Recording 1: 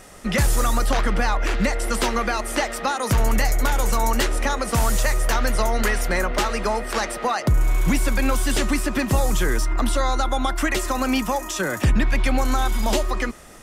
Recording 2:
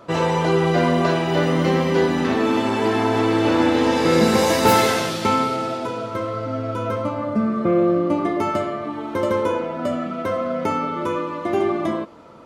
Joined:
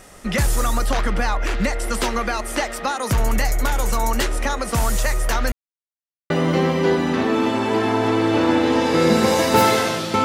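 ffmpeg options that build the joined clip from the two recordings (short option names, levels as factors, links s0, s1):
-filter_complex "[0:a]apad=whole_dur=10.24,atrim=end=10.24,asplit=2[s0][s1];[s0]atrim=end=5.52,asetpts=PTS-STARTPTS,afade=t=out:st=5.516:d=0.004:c=hsin[s2];[s1]atrim=start=5.52:end=6.3,asetpts=PTS-STARTPTS,volume=0[s3];[1:a]atrim=start=1.41:end=5.35,asetpts=PTS-STARTPTS,afade=t=in:d=0.004:c=hsin[s4];[s2][s3][s4]concat=n=3:v=0:a=1"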